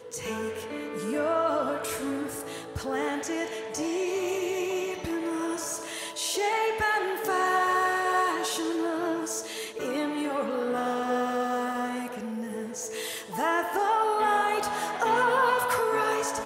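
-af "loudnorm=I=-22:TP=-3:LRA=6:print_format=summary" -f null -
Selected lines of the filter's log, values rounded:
Input Integrated:    -27.6 LUFS
Input True Peak:     -12.0 dBTP
Input LRA:             5.2 LU
Input Threshold:     -37.6 LUFS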